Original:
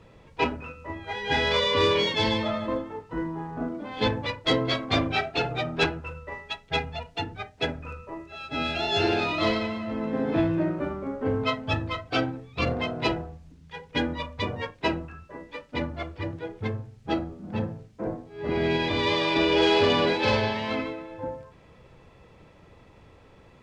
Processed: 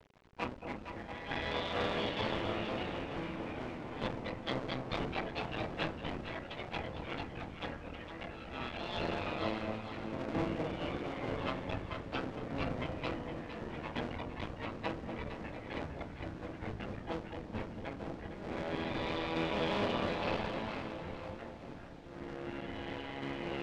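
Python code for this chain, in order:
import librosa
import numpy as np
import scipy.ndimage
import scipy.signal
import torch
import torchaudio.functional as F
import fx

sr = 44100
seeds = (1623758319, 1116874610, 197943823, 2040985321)

y = fx.cycle_switch(x, sr, every=2, mode='muted')
y = fx.echo_pitch(y, sr, ms=200, semitones=-3, count=3, db_per_echo=-6.0)
y = fx.echo_alternate(y, sr, ms=229, hz=810.0, feedback_pct=63, wet_db=-5.5)
y = fx.quant_dither(y, sr, seeds[0], bits=8, dither='none')
y = scipy.signal.sosfilt(scipy.signal.butter(2, 5200.0, 'lowpass', fs=sr, output='sos'), y)
y = fx.high_shelf(y, sr, hz=3600.0, db=-7.5)
y = fx.notch(y, sr, hz=400.0, q=12.0)
y = F.gain(torch.from_numpy(y), -9.0).numpy()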